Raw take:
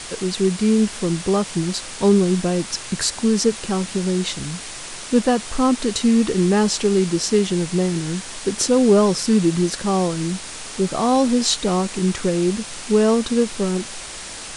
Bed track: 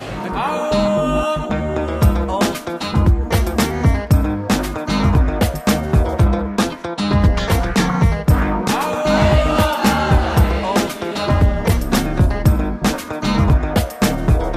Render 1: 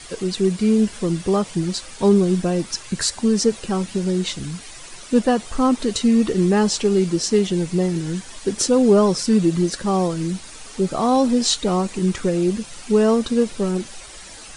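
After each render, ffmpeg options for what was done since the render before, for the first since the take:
-af "afftdn=nr=10:nf=-34"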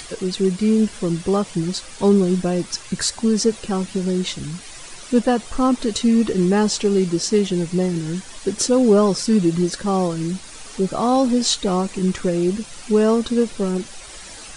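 -af "acompressor=mode=upward:threshold=0.0251:ratio=2.5"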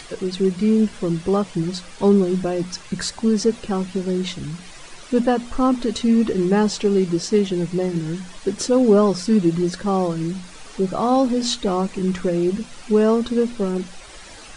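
-af "lowpass=f=3700:p=1,bandreject=f=60:t=h:w=6,bandreject=f=120:t=h:w=6,bandreject=f=180:t=h:w=6,bandreject=f=240:t=h:w=6"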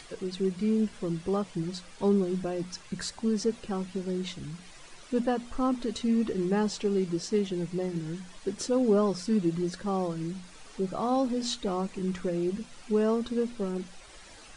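-af "volume=0.335"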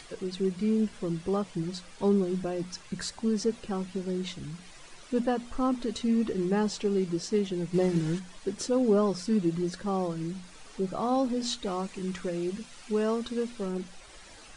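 -filter_complex "[0:a]asplit=3[s0][s1][s2];[s0]afade=t=out:st=7.73:d=0.02[s3];[s1]acontrast=54,afade=t=in:st=7.73:d=0.02,afade=t=out:st=8.18:d=0.02[s4];[s2]afade=t=in:st=8.18:d=0.02[s5];[s3][s4][s5]amix=inputs=3:normalize=0,asettb=1/sr,asplit=3[s6][s7][s8];[s6]atrim=end=11.634[s9];[s7]atrim=start=11.63:end=13.66,asetpts=PTS-STARTPTS,afade=t=in:d=0.004:c=qsin,afade=t=out:st=2.026:d=0.004:c=qsin,tiltshelf=f=970:g=-3[s10];[s8]atrim=start=13.656[s11];[s9][s10]acrossfade=d=0.004:c1=hsin:c2=qsin[s12];[s12][s11]acrossfade=d=0.004:c1=qsin:c2=hsin"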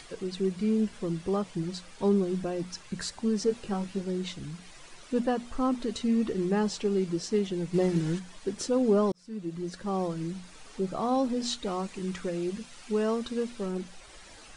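-filter_complex "[0:a]asettb=1/sr,asplit=3[s0][s1][s2];[s0]atrim=end=3.444[s3];[s1]atrim=start=3.44:end=4.01,asetpts=PTS-STARTPTS,afade=t=in:d=0.004:c=qsin,afade=t=out:st=0.566:d=0.004:c=qsin,asplit=2[s4][s5];[s5]adelay=20,volume=0.501[s6];[s4][s6]amix=inputs=2:normalize=0,atrim=end_sample=25137[s7];[s2]atrim=start=4.006[s8];[s3][s7]acrossfade=d=0.004:c1=hsin:c2=qsin[s9];[s9][s8]acrossfade=d=0.004:c1=qsin:c2=hsin,asplit=2[s10][s11];[s10]atrim=end=9.12,asetpts=PTS-STARTPTS,afade=t=out:st=9.116:d=0.004:c=hsin[s12];[s11]atrim=start=9.12,asetpts=PTS-STARTPTS,afade=t=in:d=0.9[s13];[s12][s13]concat=n=2:v=0:a=1"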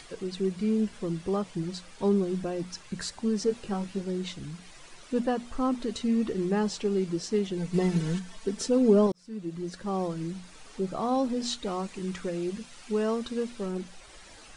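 -filter_complex "[0:a]asettb=1/sr,asplit=3[s0][s1][s2];[s0]atrim=end=7.574[s3];[s1]atrim=start=7.57:end=9.07,asetpts=PTS-STARTPTS,afade=t=in:d=0.004:c=qsin,afade=t=out:st=1.496:d=0.004:c=qsin,aecho=1:1:4.5:0.65,atrim=end_sample=66150[s4];[s2]atrim=start=9.066[s5];[s3][s4]acrossfade=d=0.004:c1=hsin:c2=qsin[s6];[s6][s5]acrossfade=d=0.004:c1=qsin:c2=hsin"

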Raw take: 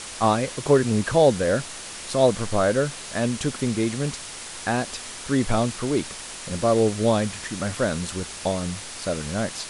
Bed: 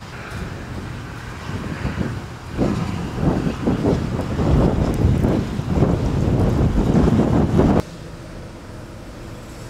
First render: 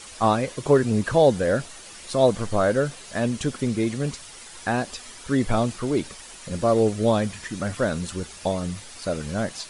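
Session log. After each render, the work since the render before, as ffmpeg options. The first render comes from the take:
-af "afftdn=nr=9:nf=-37"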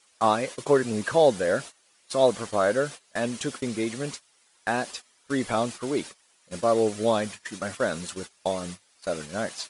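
-af "highpass=f=400:p=1,agate=range=0.1:threshold=0.0158:ratio=16:detection=peak"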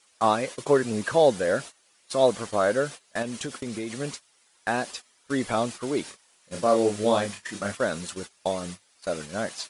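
-filter_complex "[0:a]asettb=1/sr,asplit=3[s0][s1][s2];[s0]atrim=end=3.224[s3];[s1]atrim=start=3.22:end=4,asetpts=PTS-STARTPTS,afade=t=in:d=0.004:c=qsin,afade=t=out:st=0.776:d=0.004:c=qsin,acompressor=threshold=0.0398:ratio=6:attack=3.2:release=140:knee=1:detection=peak[s4];[s2]atrim=start=3.996[s5];[s3][s4]acrossfade=d=0.004:c1=hsin:c2=qsin[s6];[s6][s5]acrossfade=d=0.004:c1=qsin:c2=hsin,asettb=1/sr,asplit=3[s7][s8][s9];[s7]atrim=end=6.044[s10];[s8]atrim=start=6.04:end=7.72,asetpts=PTS-STARTPTS,afade=t=in:d=0.004:c=qsin,afade=t=out:st=1.676:d=0.004:c=qsin,asplit=2[s11][s12];[s12]adelay=30,volume=0.631[s13];[s11][s13]amix=inputs=2:normalize=0,atrim=end_sample=74088[s14];[s9]atrim=start=7.716[s15];[s10][s14]acrossfade=d=0.004:c1=hsin:c2=qsin[s16];[s16][s15]acrossfade=d=0.004:c1=qsin:c2=hsin"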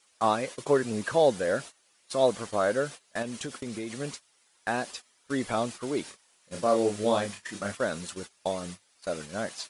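-af "volume=0.708"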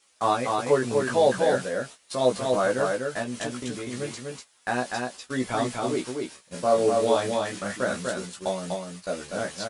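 -filter_complex "[0:a]asplit=2[s0][s1];[s1]adelay=16,volume=0.75[s2];[s0][s2]amix=inputs=2:normalize=0,aecho=1:1:246:0.668"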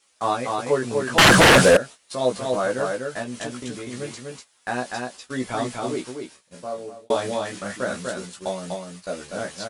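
-filter_complex "[0:a]asettb=1/sr,asplit=3[s0][s1][s2];[s0]atrim=end=1.184[s3];[s1]atrim=start=1.18:end=1.77,asetpts=PTS-STARTPTS,afade=t=in:d=0.004:c=qsin,afade=t=out:st=0.586:d=0.004:c=qsin,aeval=exprs='0.376*sin(PI/2*6.31*val(0)/0.376)':c=same[s4];[s2]atrim=start=1.766[s5];[s3][s4]acrossfade=d=0.004:c1=hsin:c2=qsin[s6];[s6][s5]acrossfade=d=0.004:c1=qsin:c2=hsin,asplit=2[s7][s8];[s7]atrim=end=7.1,asetpts=PTS-STARTPTS,afade=t=out:st=5.89:d=1.21[s9];[s8]atrim=start=7.1,asetpts=PTS-STARTPTS,afade=t=in:d=0.004:c=hsin[s10];[s9][s10]concat=n=2:v=0:a=1"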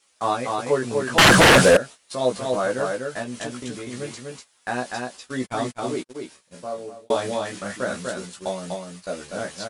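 -filter_complex "[0:a]asplit=3[s0][s1][s2];[s0]afade=t=out:st=5.32:d=0.02[s3];[s1]agate=range=0.00447:threshold=0.0224:ratio=16:release=100:detection=peak,afade=t=in:st=5.32:d=0.02,afade=t=out:st=6.14:d=0.02[s4];[s2]afade=t=in:st=6.14:d=0.02[s5];[s3][s4][s5]amix=inputs=3:normalize=0"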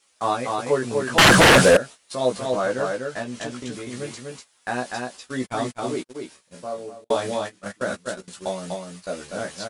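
-filter_complex "[0:a]asettb=1/sr,asplit=3[s0][s1][s2];[s0]atrim=end=2.464[s3];[s1]atrim=start=2.46:end=3.72,asetpts=PTS-STARTPTS,afade=t=in:d=0.004:c=qsin,afade=t=out:st=1.256:d=0.004:c=qsin,lowpass=8400[s4];[s2]atrim=start=3.716[s5];[s3][s4]acrossfade=d=0.004:c1=hsin:c2=qsin[s6];[s6][s5]acrossfade=d=0.004:c1=qsin:c2=hsin,asettb=1/sr,asplit=3[s7][s8][s9];[s7]atrim=end=7.044[s10];[s8]atrim=start=7.04:end=8.28,asetpts=PTS-STARTPTS,afade=t=in:d=0.004:c=qsin,afade=t=out:st=1.236:d=0.004:c=qsin,agate=range=0.0891:threshold=0.0282:ratio=16:release=100:detection=peak[s11];[s9]atrim=start=8.276[s12];[s10][s11]acrossfade=d=0.004:c1=hsin:c2=qsin[s13];[s13][s12]acrossfade=d=0.004:c1=qsin:c2=hsin"

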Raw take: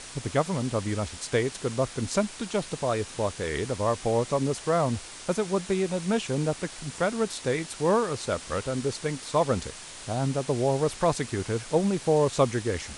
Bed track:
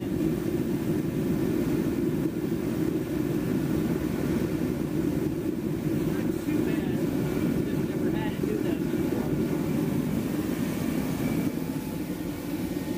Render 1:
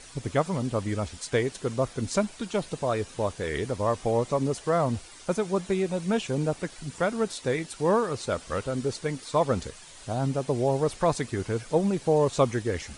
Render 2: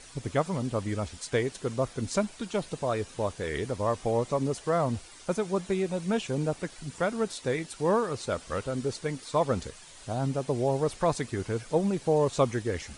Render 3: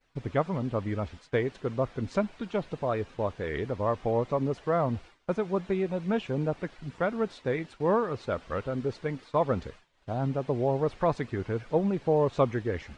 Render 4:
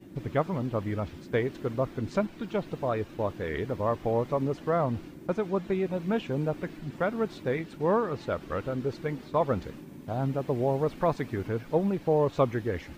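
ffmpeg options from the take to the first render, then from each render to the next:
-af "afftdn=nr=9:nf=-43"
-af "volume=0.794"
-af "lowpass=2700,agate=range=0.0224:threshold=0.00794:ratio=3:detection=peak"
-filter_complex "[1:a]volume=0.119[s0];[0:a][s0]amix=inputs=2:normalize=0"

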